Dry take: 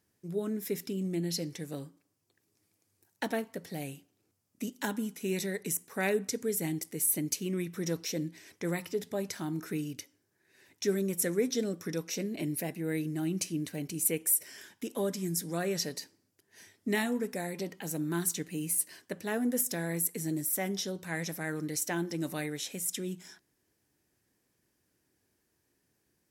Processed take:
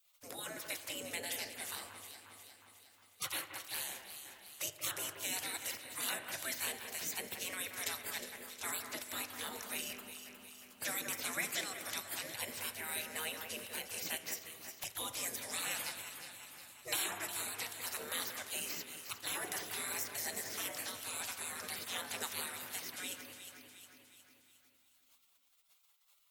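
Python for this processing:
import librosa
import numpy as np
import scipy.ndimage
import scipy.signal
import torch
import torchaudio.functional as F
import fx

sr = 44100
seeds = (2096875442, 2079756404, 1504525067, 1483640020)

y = fx.env_flanger(x, sr, rest_ms=11.4, full_db=-32.0, at=(14.76, 15.17))
y = fx.low_shelf(y, sr, hz=66.0, db=-5.0)
y = fx.spec_gate(y, sr, threshold_db=-25, keep='weak')
y = fx.echo_alternate(y, sr, ms=180, hz=2500.0, feedback_pct=64, wet_db=-8.0)
y = fx.rev_spring(y, sr, rt60_s=2.1, pass_ms=(40, 60), chirp_ms=60, drr_db=13.5)
y = fx.band_squash(y, sr, depth_pct=40)
y = y * 10.0 ** (10.0 / 20.0)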